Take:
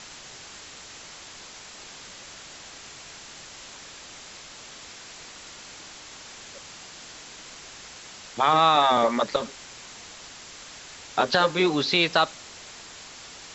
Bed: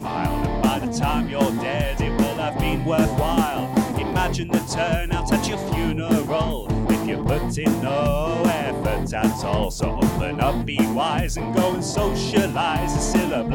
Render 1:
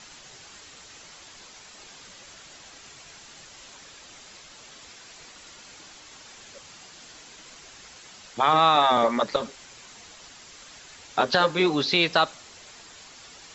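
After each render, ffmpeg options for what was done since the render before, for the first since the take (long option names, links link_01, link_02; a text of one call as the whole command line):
ffmpeg -i in.wav -af "afftdn=noise_reduction=6:noise_floor=-44" out.wav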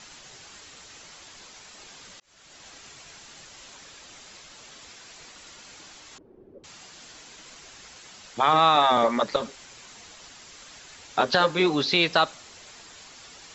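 ffmpeg -i in.wav -filter_complex "[0:a]asettb=1/sr,asplit=3[link_01][link_02][link_03];[link_01]atrim=end=6.184[link_04];[link_02]atrim=start=6.18:end=6.64,asetpts=PTS-STARTPTS,afade=type=in:duration=0.004:curve=qsin,afade=type=out:start_time=0.456:duration=0.004:curve=qsin,lowpass=frequency=370:width_type=q:width=4[link_05];[link_03]atrim=start=6.636[link_06];[link_04][link_05]acrossfade=duration=0.004:curve1=hsin:curve2=qsin[link_07];[link_07][link_06]acrossfade=duration=0.004:curve1=qsin:curve2=hsin,asplit=2[link_08][link_09];[link_08]atrim=end=2.2,asetpts=PTS-STARTPTS,afade=type=out:start_time=2.196:duration=0.004:curve=hsin[link_10];[link_09]atrim=start=2.2,asetpts=PTS-STARTPTS,afade=type=in:duration=0.47[link_11];[link_10][link_11]concat=n=2:v=0:a=1" out.wav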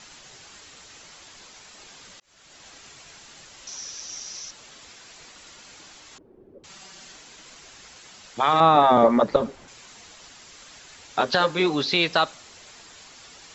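ffmpeg -i in.wav -filter_complex "[0:a]asettb=1/sr,asplit=3[link_01][link_02][link_03];[link_01]atrim=end=3.674[link_04];[link_02]atrim=start=3.67:end=4.51,asetpts=PTS-STARTPTS,afade=type=in:duration=0.004:curve=qsin,afade=type=out:start_time=0.836:duration=0.004:curve=qsin,lowpass=frequency=5800:width_type=q:width=9.8[link_05];[link_03]atrim=start=4.506[link_06];[link_04][link_05]acrossfade=duration=0.004:curve1=hsin:curve2=qsin[link_07];[link_07][link_06]acrossfade=duration=0.004:curve1=qsin:curve2=hsin,asettb=1/sr,asplit=3[link_08][link_09][link_10];[link_08]atrim=end=6.694[link_11];[link_09]atrim=start=6.69:end=7.16,asetpts=PTS-STARTPTS,afade=type=in:duration=0.004:curve=qsin,afade=type=out:start_time=0.466:duration=0.004:curve=qsin,aecho=1:1:5.2:0.65,atrim=end_sample=20727[link_12];[link_10]atrim=start=7.156[link_13];[link_11][link_12]acrossfade=duration=0.004:curve1=hsin:curve2=qsin[link_14];[link_14][link_13]acrossfade=duration=0.004:curve1=qsin:curve2=hsin,asettb=1/sr,asplit=3[link_15][link_16][link_17];[link_15]atrim=end=8.604[link_18];[link_16]atrim=start=8.6:end=9.68,asetpts=PTS-STARTPTS,afade=type=in:duration=0.004:curve=qsin,afade=type=out:start_time=1.076:duration=0.004:curve=qsin,tiltshelf=frequency=1400:gain=8.5[link_19];[link_17]atrim=start=9.676[link_20];[link_18][link_19]acrossfade=duration=0.004:curve1=hsin:curve2=qsin[link_21];[link_21][link_20]acrossfade=duration=0.004:curve1=qsin:curve2=hsin" out.wav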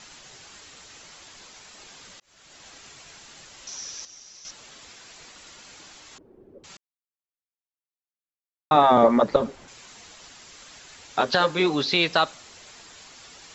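ffmpeg -i in.wav -filter_complex "[0:a]asplit=5[link_01][link_02][link_03][link_04][link_05];[link_01]atrim=end=4.052[link_06];[link_02]atrim=start=4.048:end=4.452,asetpts=PTS-STARTPTS,volume=-10dB[link_07];[link_03]atrim=start=4.448:end=6.77,asetpts=PTS-STARTPTS,afade=type=out:start_time=2.318:duration=0.004:curve=hsin[link_08];[link_04]atrim=start=6.77:end=8.71,asetpts=PTS-STARTPTS,volume=0[link_09];[link_05]atrim=start=8.71,asetpts=PTS-STARTPTS,afade=type=in:duration=0.004:curve=hsin[link_10];[link_06][link_07]acrossfade=duration=0.004:curve1=hsin:curve2=hsin[link_11];[link_08][link_09][link_10]concat=n=3:v=0:a=1[link_12];[link_11][link_12]acrossfade=duration=0.004:curve1=hsin:curve2=hsin" out.wav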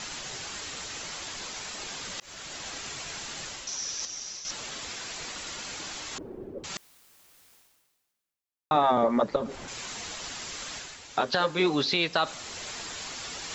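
ffmpeg -i in.wav -af "areverse,acompressor=mode=upward:threshold=-28dB:ratio=2.5,areverse,alimiter=limit=-13dB:level=0:latency=1:release=441" out.wav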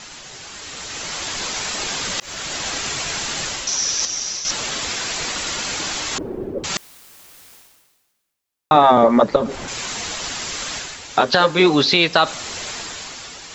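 ffmpeg -i in.wav -af "dynaudnorm=framelen=290:gausssize=7:maxgain=13dB" out.wav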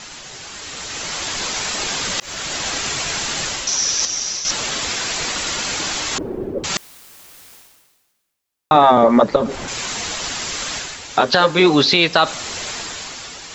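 ffmpeg -i in.wav -af "volume=2dB,alimiter=limit=-2dB:level=0:latency=1" out.wav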